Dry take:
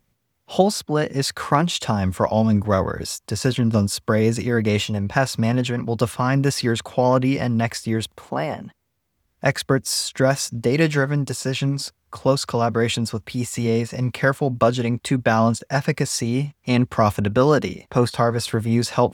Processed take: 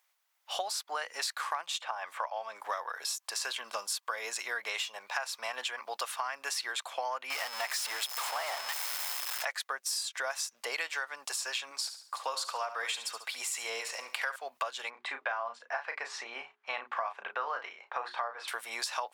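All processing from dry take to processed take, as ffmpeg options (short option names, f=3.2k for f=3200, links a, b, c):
-filter_complex "[0:a]asettb=1/sr,asplit=3[a][b][c];[a]atrim=end=1.794[d];[b]atrim=start=1.79:end=2.66,asetpts=PTS-STARTPTS,afade=t=in:d=0.004:c=qsin,afade=t=out:st=0.866:d=0.004:c=qsin,highpass=300,acrossover=split=3000[e][f];[f]acompressor=threshold=-55dB:ratio=4:attack=1:release=60[g];[e][g]amix=inputs=2:normalize=0[h];[c]atrim=start=2.656[i];[d][h]acrossfade=d=0.004:c1=hsin:c2=qsin[j];[j][i]acrossfade=d=0.004:c1=qsin:c2=hsin,asettb=1/sr,asplit=3[k][l][m];[k]atrim=end=7.304[n];[l]atrim=start=7.3:end=9.45,asetpts=PTS-STARTPTS,afade=t=in:d=0.004:c=qsin,afade=t=out:st=2.146:d=0.004:c=qsin,aeval=exprs='val(0)+0.5*0.0944*sgn(val(0))':c=same,aeval=exprs='val(0)+0.0141*sin(2*PI*5200*n/s)':c=same[o];[m]atrim=start=9.446[p];[n][o]acrossfade=d=0.004:c1=hsin:c2=qsin[q];[q][p]acrossfade=d=0.004:c1=qsin:c2=hsin,asettb=1/sr,asplit=3[r][s][t];[r]atrim=end=11.714[u];[s]atrim=start=11.71:end=14.36,asetpts=PTS-STARTPTS,afade=t=in:d=0.004:c=qsin,afade=t=out:st=2.646:d=0.004:c=qsin,highpass=160,aecho=1:1:70|140|210|280:0.251|0.0929|0.0344|0.0127,atrim=end_sample=116865[v];[t]atrim=start=14.356[w];[u][v]acrossfade=d=0.004:c1=hsin:c2=qsin[x];[x][w]acrossfade=d=0.004:c1=qsin:c2=hsin,asettb=1/sr,asplit=3[y][z][aa];[y]atrim=end=14.904[ab];[z]atrim=start=14.9:end=18.48,asetpts=PTS-STARTPTS,afade=t=in:d=0.004:c=qsin,afade=t=out:st=3.576:d=0.004:c=qsin,lowpass=2.1k,bandreject=f=60:t=h:w=6,bandreject=f=120:t=h:w=6,bandreject=f=180:t=h:w=6,bandreject=f=240:t=h:w=6,bandreject=f=300:t=h:w=6,bandreject=f=360:t=h:w=6,bandreject=f=420:t=h:w=6,asplit=2[ac][ad];[ad]adelay=34,volume=-8dB[ae];[ac][ae]amix=inputs=2:normalize=0,atrim=end_sample=157878[af];[aa]atrim=start=18.476[ag];[ab][af]acrossfade=d=0.004:c1=hsin:c2=qsin[ah];[ah][ag]acrossfade=d=0.004:c1=qsin:c2=hsin,highpass=f=800:w=0.5412,highpass=f=800:w=1.3066,acompressor=threshold=-32dB:ratio=6"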